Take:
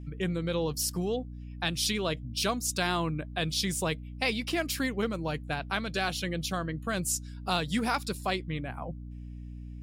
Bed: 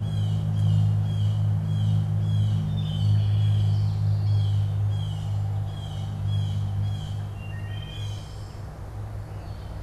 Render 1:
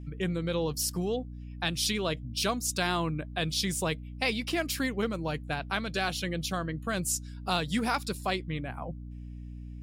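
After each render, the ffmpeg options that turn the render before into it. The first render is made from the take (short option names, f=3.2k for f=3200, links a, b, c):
-af anull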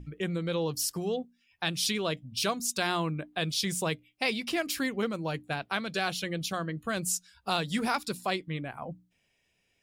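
-af "bandreject=f=60:t=h:w=6,bandreject=f=120:t=h:w=6,bandreject=f=180:t=h:w=6,bandreject=f=240:t=h:w=6,bandreject=f=300:t=h:w=6"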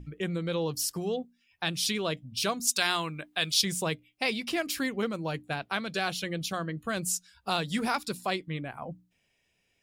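-filter_complex "[0:a]asettb=1/sr,asplit=3[a][b][c];[a]atrim=end=2.674[d];[b]atrim=start=2.67:end=3.62,asetpts=PTS-STARTPTS,afade=t=in:d=0.004:c=qsin,afade=t=out:st=0.946:d=0.004:c=qsin,tiltshelf=f=970:g=-6.5[e];[c]atrim=start=3.616[f];[d][e]acrossfade=d=0.004:c1=hsin:c2=qsin[g];[g][f]acrossfade=d=0.004:c1=qsin:c2=hsin"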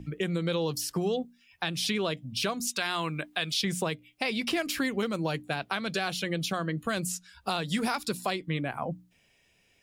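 -filter_complex "[0:a]acrossover=split=110|3100[a][b][c];[a]acompressor=threshold=-60dB:ratio=4[d];[b]acompressor=threshold=-32dB:ratio=4[e];[c]acompressor=threshold=-42dB:ratio=4[f];[d][e][f]amix=inputs=3:normalize=0,asplit=2[g][h];[h]alimiter=level_in=2.5dB:limit=-24dB:level=0:latency=1:release=194,volume=-2.5dB,volume=2dB[i];[g][i]amix=inputs=2:normalize=0"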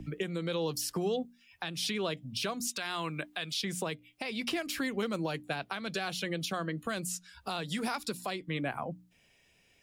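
-filter_complex "[0:a]acrossover=split=180|3000[a][b][c];[a]acompressor=threshold=-42dB:ratio=6[d];[d][b][c]amix=inputs=3:normalize=0,alimiter=limit=-23dB:level=0:latency=1:release=425"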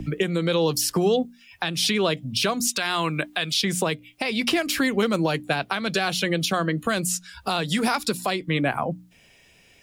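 -af "volume=11dB"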